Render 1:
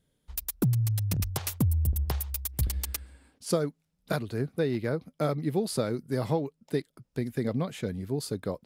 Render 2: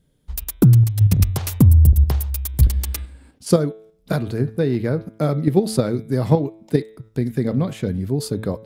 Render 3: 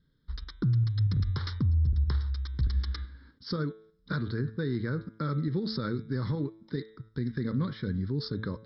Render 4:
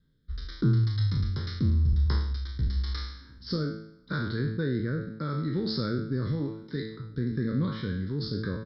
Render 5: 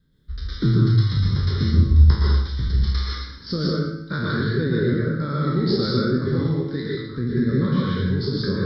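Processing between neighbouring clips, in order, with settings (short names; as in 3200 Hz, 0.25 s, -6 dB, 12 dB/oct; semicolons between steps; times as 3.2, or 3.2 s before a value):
low shelf 390 Hz +8 dB; de-hum 109.7 Hz, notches 36; in parallel at +0.5 dB: level quantiser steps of 20 dB; on the sum: gain +2.5 dB
limiter -14 dBFS, peak gain reduction 11.5 dB; rippled Chebyshev low-pass 5400 Hz, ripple 6 dB; fixed phaser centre 2600 Hz, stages 6
spectral trails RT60 0.74 s; outdoor echo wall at 120 m, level -27 dB; rotary speaker horn 0.85 Hz; gain +1.5 dB
plate-style reverb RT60 0.64 s, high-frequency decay 0.95×, pre-delay 0.105 s, DRR -3.5 dB; gain +4 dB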